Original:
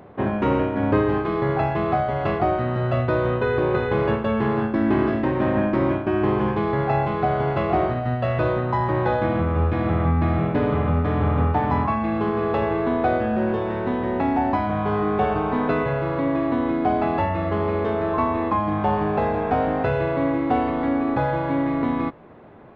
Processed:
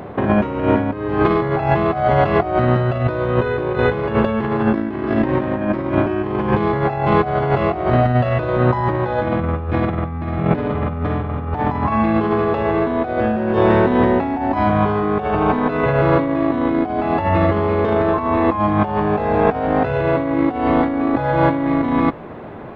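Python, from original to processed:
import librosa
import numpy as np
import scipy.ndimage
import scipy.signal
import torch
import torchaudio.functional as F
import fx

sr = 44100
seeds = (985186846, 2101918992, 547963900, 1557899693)

y = fx.over_compress(x, sr, threshold_db=-25.0, ratio=-0.5)
y = F.gain(torch.from_numpy(y), 8.5).numpy()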